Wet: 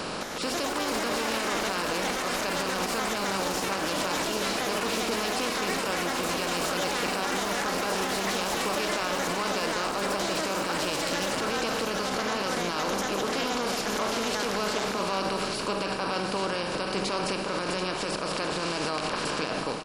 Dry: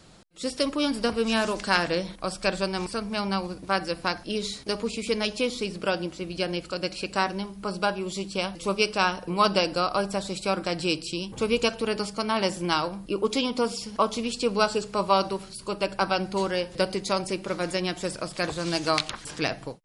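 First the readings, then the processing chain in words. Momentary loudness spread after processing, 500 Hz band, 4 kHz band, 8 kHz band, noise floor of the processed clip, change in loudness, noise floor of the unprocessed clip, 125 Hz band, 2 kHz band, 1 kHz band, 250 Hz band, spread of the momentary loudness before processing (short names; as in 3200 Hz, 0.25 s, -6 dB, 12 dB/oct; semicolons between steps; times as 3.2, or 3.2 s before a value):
2 LU, -2.5 dB, 0.0 dB, +5.5 dB, -32 dBFS, -1.0 dB, -46 dBFS, -3.5 dB, +1.0 dB, -0.5 dB, -3.0 dB, 7 LU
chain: per-bin compression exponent 0.4; echoes that change speed 0.21 s, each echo +5 st, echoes 3; limiter -14 dBFS, peak gain reduction 12 dB; on a send: feedback echo 0.738 s, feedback 36%, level -9 dB; on the sum: gain -5.5 dB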